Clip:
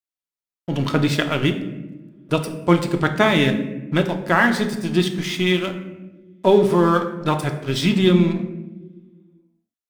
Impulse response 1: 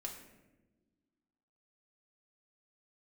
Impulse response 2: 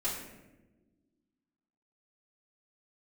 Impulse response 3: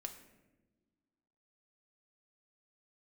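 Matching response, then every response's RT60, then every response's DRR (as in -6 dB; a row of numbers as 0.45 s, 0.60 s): 3; no single decay rate, no single decay rate, no single decay rate; -0.5 dB, -10.5 dB, 4.5 dB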